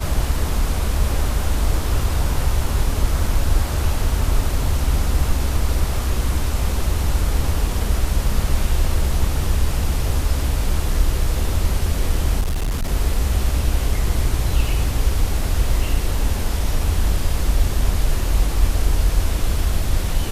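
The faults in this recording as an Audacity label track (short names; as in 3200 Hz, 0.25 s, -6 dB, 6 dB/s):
12.400000	12.910000	clipped -17.5 dBFS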